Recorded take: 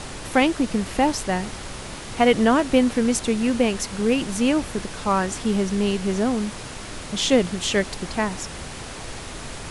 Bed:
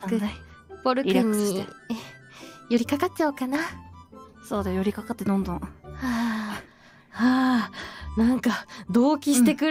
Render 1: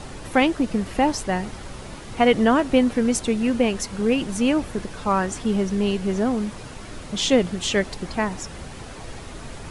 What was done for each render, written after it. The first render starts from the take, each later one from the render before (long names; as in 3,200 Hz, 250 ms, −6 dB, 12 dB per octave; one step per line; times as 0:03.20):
broadband denoise 7 dB, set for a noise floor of −36 dBFS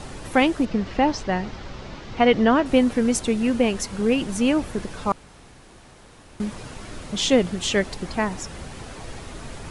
0:00.65–0:02.66: low-pass filter 5,700 Hz 24 dB per octave
0:05.12–0:06.40: fill with room tone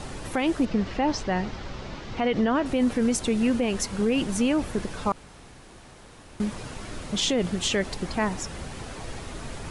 brickwall limiter −15 dBFS, peak gain reduction 10 dB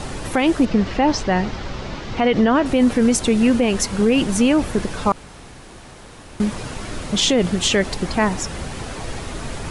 level +7.5 dB